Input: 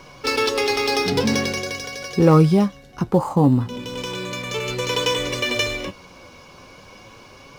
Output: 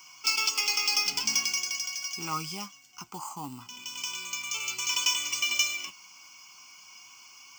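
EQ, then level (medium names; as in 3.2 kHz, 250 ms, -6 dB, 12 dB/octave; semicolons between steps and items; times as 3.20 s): differentiator; static phaser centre 2.6 kHz, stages 8; +6.0 dB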